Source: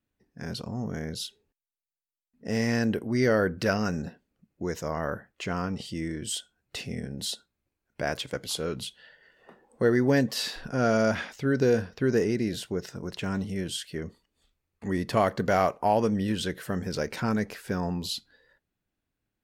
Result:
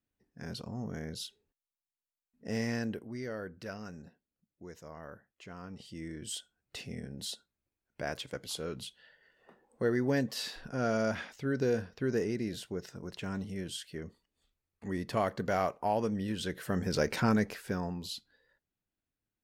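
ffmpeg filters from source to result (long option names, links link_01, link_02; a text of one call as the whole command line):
ffmpeg -i in.wav -af "volume=12dB,afade=type=out:start_time=2.55:duration=0.68:silence=0.298538,afade=type=in:start_time=5.58:duration=0.76:silence=0.334965,afade=type=in:start_time=16.37:duration=0.74:silence=0.375837,afade=type=out:start_time=17.11:duration=0.84:silence=0.334965" out.wav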